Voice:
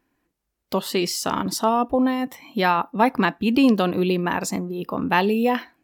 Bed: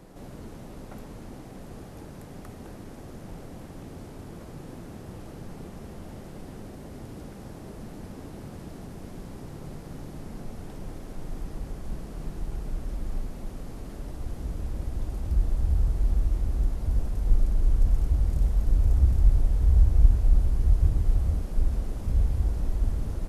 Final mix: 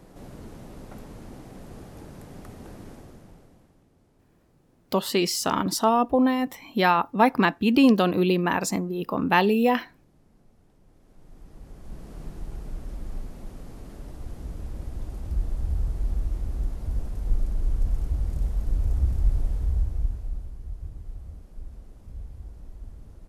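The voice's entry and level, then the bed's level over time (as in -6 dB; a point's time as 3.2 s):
4.20 s, -0.5 dB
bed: 2.9 s -0.5 dB
3.89 s -21 dB
10.83 s -21 dB
12.11 s -3 dB
19.51 s -3 dB
20.6 s -15.5 dB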